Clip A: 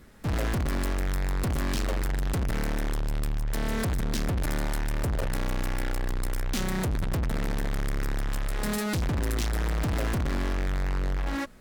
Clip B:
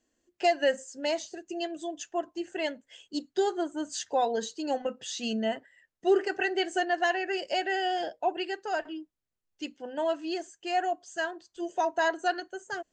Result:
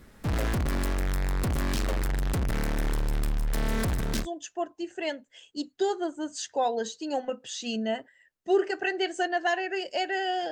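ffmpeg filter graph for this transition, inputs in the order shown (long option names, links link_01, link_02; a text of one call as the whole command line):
ffmpeg -i cue0.wav -i cue1.wav -filter_complex "[0:a]asettb=1/sr,asplit=3[link_01][link_02][link_03];[link_01]atrim=end=2.434[link_04];[link_02]atrim=start=2.43:end=4.27,asetpts=PTS-STARTPTS,afade=type=in:duration=0.004:curve=qsin,afade=type=out:start_time=1.836:duration=0.004:curve=qsin,aecho=1:1:348:0.266,atrim=end_sample=81144[link_05];[link_03]atrim=start=4.266[link_06];[link_04][link_05]acrossfade=duration=0.004:curve1=hsin:curve2=qsin[link_07];[link_07][link_06]acrossfade=duration=0.004:curve1=qsin:curve2=hsin,apad=whole_dur=10.51,atrim=end=10.51,atrim=end=4.27,asetpts=PTS-STARTPTS[link_08];[1:a]atrim=start=1.76:end=8.08,asetpts=PTS-STARTPTS[link_09];[link_08][link_09]acrossfade=duration=0.08:curve1=tri:curve2=tri" out.wav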